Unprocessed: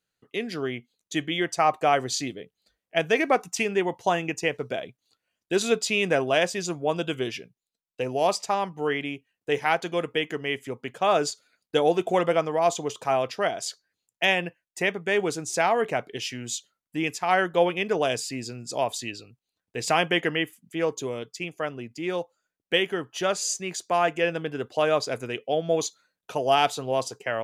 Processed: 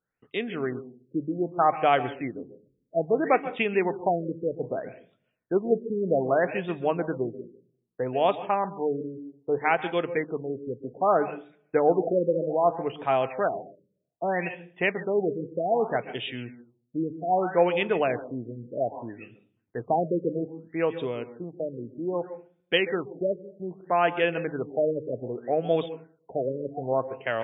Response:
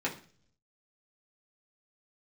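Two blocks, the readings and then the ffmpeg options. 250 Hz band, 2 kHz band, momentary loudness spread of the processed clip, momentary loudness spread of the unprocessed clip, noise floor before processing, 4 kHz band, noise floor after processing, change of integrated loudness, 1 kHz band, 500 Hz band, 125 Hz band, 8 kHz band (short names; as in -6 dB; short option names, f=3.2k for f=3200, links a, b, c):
+0.5 dB, -5.0 dB, 13 LU, 11 LU, under -85 dBFS, -9.0 dB, -75 dBFS, -1.0 dB, -1.0 dB, 0.0 dB, -0.5 dB, under -40 dB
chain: -filter_complex "[0:a]bandreject=f=50:t=h:w=6,bandreject=f=100:t=h:w=6,bandreject=f=150:t=h:w=6,asplit=2[a][b];[1:a]atrim=start_sample=2205,adelay=130[c];[b][c]afir=irnorm=-1:irlink=0,volume=-19.5dB[d];[a][d]amix=inputs=2:normalize=0,afftfilt=real='re*lt(b*sr/1024,570*pow(3800/570,0.5+0.5*sin(2*PI*0.63*pts/sr)))':imag='im*lt(b*sr/1024,570*pow(3800/570,0.5+0.5*sin(2*PI*0.63*pts/sr)))':win_size=1024:overlap=0.75"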